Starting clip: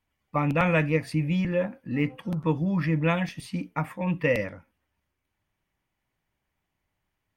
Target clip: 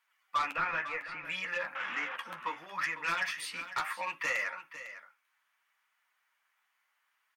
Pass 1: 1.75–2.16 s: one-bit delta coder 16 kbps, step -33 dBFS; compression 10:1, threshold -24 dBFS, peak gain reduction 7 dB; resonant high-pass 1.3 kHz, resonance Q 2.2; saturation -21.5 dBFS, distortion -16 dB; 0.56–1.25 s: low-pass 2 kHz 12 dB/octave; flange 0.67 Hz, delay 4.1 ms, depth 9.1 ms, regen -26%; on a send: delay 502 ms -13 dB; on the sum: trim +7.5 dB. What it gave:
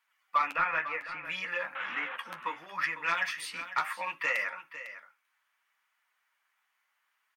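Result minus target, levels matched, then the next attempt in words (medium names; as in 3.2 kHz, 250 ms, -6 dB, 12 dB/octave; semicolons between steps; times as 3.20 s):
saturation: distortion -8 dB
1.75–2.16 s: one-bit delta coder 16 kbps, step -33 dBFS; compression 10:1, threshold -24 dBFS, peak gain reduction 7 dB; resonant high-pass 1.3 kHz, resonance Q 2.2; saturation -29.5 dBFS, distortion -9 dB; 0.56–1.25 s: low-pass 2 kHz 12 dB/octave; flange 0.67 Hz, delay 4.1 ms, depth 9.1 ms, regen -26%; on a send: delay 502 ms -13 dB; on the sum: trim +7.5 dB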